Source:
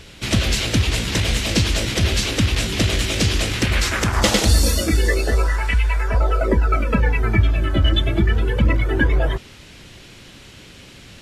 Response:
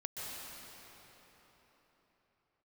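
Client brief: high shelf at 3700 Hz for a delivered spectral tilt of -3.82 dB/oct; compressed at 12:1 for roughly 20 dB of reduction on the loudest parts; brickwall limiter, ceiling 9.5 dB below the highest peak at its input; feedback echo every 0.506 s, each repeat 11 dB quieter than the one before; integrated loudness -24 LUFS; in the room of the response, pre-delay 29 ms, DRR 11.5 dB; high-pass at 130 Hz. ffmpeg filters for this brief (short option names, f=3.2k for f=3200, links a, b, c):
-filter_complex "[0:a]highpass=130,highshelf=f=3.7k:g=6.5,acompressor=threshold=-33dB:ratio=12,alimiter=level_in=3.5dB:limit=-24dB:level=0:latency=1,volume=-3.5dB,aecho=1:1:506|1012|1518:0.282|0.0789|0.0221,asplit=2[a][b];[1:a]atrim=start_sample=2205,adelay=29[c];[b][c]afir=irnorm=-1:irlink=0,volume=-13dB[d];[a][d]amix=inputs=2:normalize=0,volume=13dB"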